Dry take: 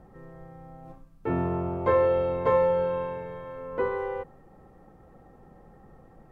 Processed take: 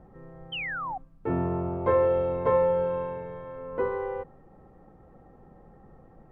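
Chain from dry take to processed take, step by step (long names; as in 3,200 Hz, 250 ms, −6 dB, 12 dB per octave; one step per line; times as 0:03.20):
high-shelf EQ 2,900 Hz −12 dB
sound drawn into the spectrogram fall, 0:00.52–0:00.98, 720–3,200 Hz −33 dBFS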